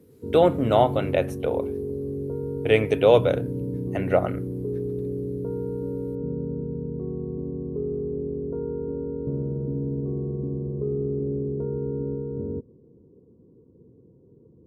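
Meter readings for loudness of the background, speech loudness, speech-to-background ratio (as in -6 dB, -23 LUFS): -30.0 LUFS, -22.5 LUFS, 7.5 dB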